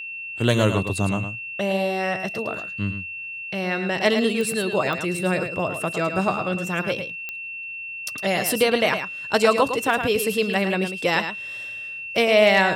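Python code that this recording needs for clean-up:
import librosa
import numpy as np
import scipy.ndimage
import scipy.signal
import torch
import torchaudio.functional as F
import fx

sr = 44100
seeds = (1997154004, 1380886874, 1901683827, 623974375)

y = fx.fix_declip(x, sr, threshold_db=-6.0)
y = fx.fix_declick_ar(y, sr, threshold=10.0)
y = fx.notch(y, sr, hz=2700.0, q=30.0)
y = fx.fix_echo_inverse(y, sr, delay_ms=108, level_db=-8.5)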